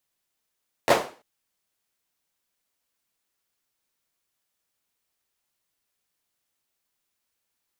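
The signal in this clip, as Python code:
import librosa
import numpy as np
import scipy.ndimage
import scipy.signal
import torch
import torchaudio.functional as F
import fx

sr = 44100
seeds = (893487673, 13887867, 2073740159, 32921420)

y = fx.drum_clap(sr, seeds[0], length_s=0.34, bursts=3, spacing_ms=11, hz=530.0, decay_s=0.38)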